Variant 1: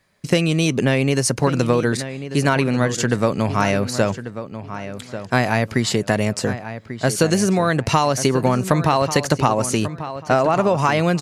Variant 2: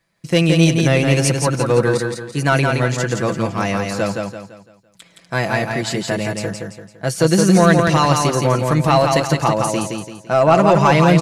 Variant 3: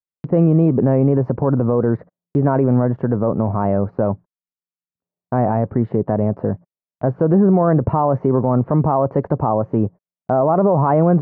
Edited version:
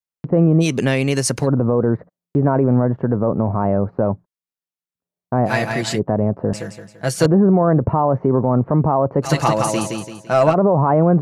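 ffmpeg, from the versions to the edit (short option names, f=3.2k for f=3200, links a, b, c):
-filter_complex "[1:a]asplit=3[a][b][c];[2:a]asplit=5[d][e][f][g][h];[d]atrim=end=0.66[i];[0:a]atrim=start=0.6:end=1.48[j];[e]atrim=start=1.42:end=5.51[k];[a]atrim=start=5.45:end=6[l];[f]atrim=start=5.94:end=6.532[m];[b]atrim=start=6.528:end=7.262[n];[g]atrim=start=7.258:end=9.28[o];[c]atrim=start=9.22:end=10.55[p];[h]atrim=start=10.49[q];[i][j]acrossfade=d=0.06:c1=tri:c2=tri[r];[r][k]acrossfade=d=0.06:c1=tri:c2=tri[s];[s][l]acrossfade=d=0.06:c1=tri:c2=tri[t];[t][m]acrossfade=d=0.06:c1=tri:c2=tri[u];[u][n]acrossfade=d=0.004:c1=hsin:c2=hsin[v];[v][o]acrossfade=d=0.004:c1=hsin:c2=hsin[w];[w][p]acrossfade=d=0.06:c1=tri:c2=tri[x];[x][q]acrossfade=d=0.06:c1=tri:c2=tri"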